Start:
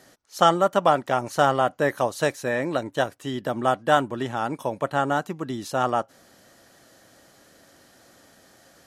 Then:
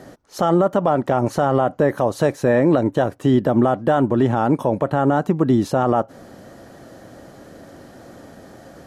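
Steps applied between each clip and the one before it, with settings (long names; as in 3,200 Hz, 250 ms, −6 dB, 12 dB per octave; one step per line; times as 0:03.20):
tilt shelving filter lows +8.5 dB, about 1,300 Hz
downward compressor 1.5 to 1, threshold −21 dBFS, peak gain reduction 5 dB
boost into a limiter +15 dB
level −6 dB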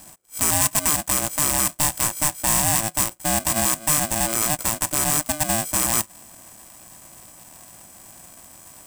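samples sorted by size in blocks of 16 samples
high shelf with overshoot 5,500 Hz +13.5 dB, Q 3
ring modulator with a square carrier 450 Hz
level −9 dB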